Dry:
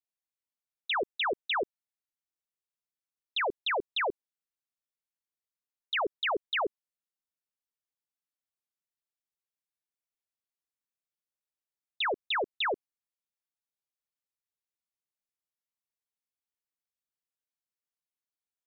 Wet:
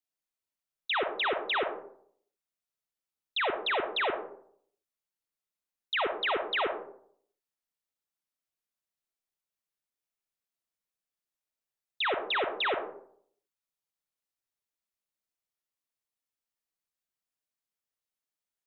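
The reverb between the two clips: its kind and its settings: digital reverb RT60 0.63 s, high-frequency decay 0.4×, pre-delay 20 ms, DRR 4.5 dB

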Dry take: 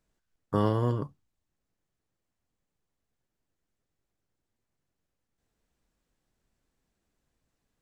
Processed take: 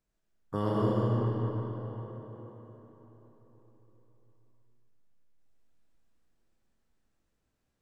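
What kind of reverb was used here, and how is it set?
digital reverb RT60 4.5 s, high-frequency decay 0.65×, pre-delay 50 ms, DRR -4.5 dB; gain -6.5 dB

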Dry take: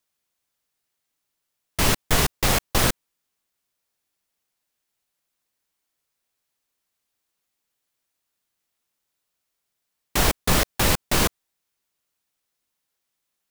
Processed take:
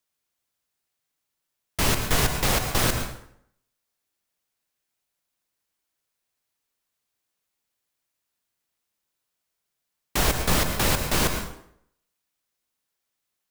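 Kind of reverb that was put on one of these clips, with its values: plate-style reverb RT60 0.68 s, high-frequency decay 0.75×, pre-delay 95 ms, DRR 6 dB; gain -2.5 dB

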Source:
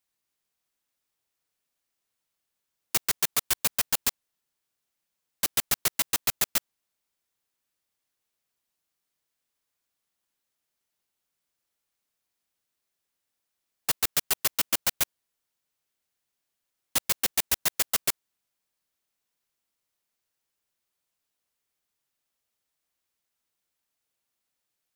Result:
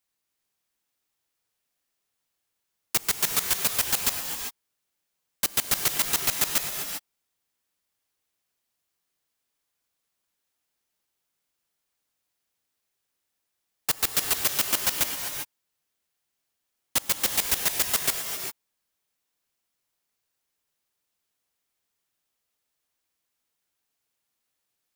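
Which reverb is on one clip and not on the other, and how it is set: non-linear reverb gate 0.42 s rising, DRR 4.5 dB; gain +1 dB

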